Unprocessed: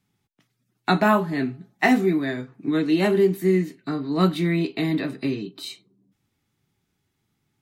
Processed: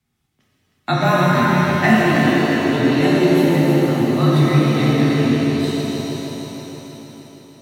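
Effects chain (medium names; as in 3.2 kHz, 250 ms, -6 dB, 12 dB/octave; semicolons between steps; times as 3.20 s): frequency shift -32 Hz; multi-head delay 157 ms, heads first and second, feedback 69%, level -10 dB; pitch-shifted reverb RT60 3.1 s, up +7 st, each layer -8 dB, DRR -5 dB; trim -1.5 dB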